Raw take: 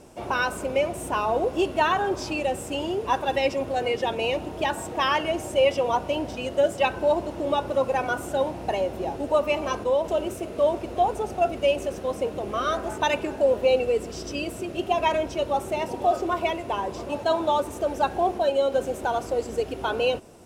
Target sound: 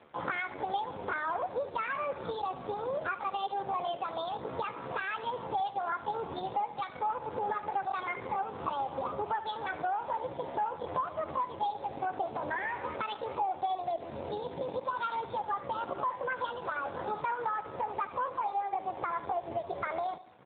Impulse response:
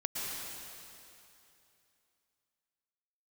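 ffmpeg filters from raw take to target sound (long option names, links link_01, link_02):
-filter_complex "[0:a]aexciter=amount=1.1:drive=5.2:freq=2800,adynamicequalizer=threshold=0.00562:dfrequency=2500:dqfactor=4.8:tfrequency=2500:tqfactor=4.8:attack=5:release=100:ratio=0.375:range=1.5:mode=boostabove:tftype=bell,acompressor=threshold=-30dB:ratio=6,aemphasis=mode=reproduction:type=cd,aresample=16000,aeval=exprs='sgn(val(0))*max(abs(val(0))-0.00299,0)':channel_layout=same,aresample=44100,asetrate=64194,aresample=44100,atempo=0.686977,acrusher=bits=7:mode=log:mix=0:aa=0.000001,asplit=2[link_01][link_02];[link_02]aecho=0:1:74|148|222|296:0.178|0.0836|0.0393|0.0185[link_03];[link_01][link_03]amix=inputs=2:normalize=0,volume=1dB" -ar 8000 -c:a libopencore_amrnb -b:a 7400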